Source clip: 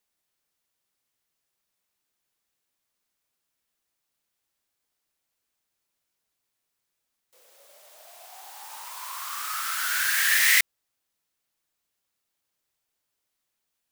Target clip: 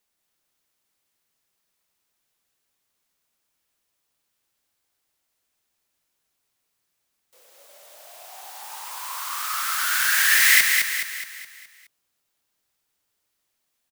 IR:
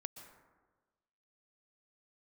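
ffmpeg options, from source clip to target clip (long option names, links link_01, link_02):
-af "aecho=1:1:210|420|630|840|1050|1260:0.596|0.286|0.137|0.0659|0.0316|0.0152,volume=3dB"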